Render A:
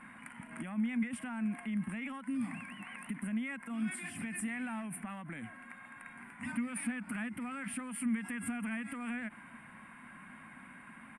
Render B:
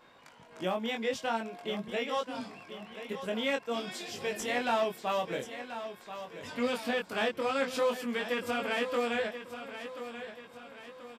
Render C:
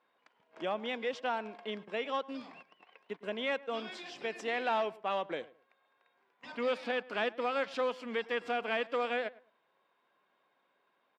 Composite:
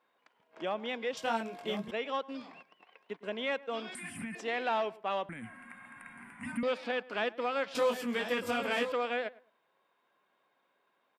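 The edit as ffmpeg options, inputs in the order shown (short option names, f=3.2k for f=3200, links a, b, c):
-filter_complex "[1:a]asplit=2[a][b];[0:a]asplit=2[c][d];[2:a]asplit=5[e][f][g][h][i];[e]atrim=end=1.172[j];[a]atrim=start=1.168:end=1.912[k];[f]atrim=start=1.908:end=3.952[l];[c]atrim=start=3.948:end=4.352[m];[g]atrim=start=4.348:end=5.292[n];[d]atrim=start=5.288:end=6.632[o];[h]atrim=start=6.628:end=7.752[p];[b]atrim=start=7.748:end=8.922[q];[i]atrim=start=8.918[r];[j][k]acrossfade=d=0.004:c1=hsin:c2=hsin[s];[s][l]acrossfade=d=0.004:c1=hsin:c2=hsin[t];[t][m]acrossfade=d=0.004:c1=hsin:c2=hsin[u];[u][n]acrossfade=d=0.004:c1=hsin:c2=hsin[v];[v][o]acrossfade=d=0.004:c1=hsin:c2=hsin[w];[w][p]acrossfade=d=0.004:c1=hsin:c2=hsin[x];[x][q]acrossfade=d=0.004:c1=hsin:c2=hsin[y];[y][r]acrossfade=d=0.004:c1=hsin:c2=hsin"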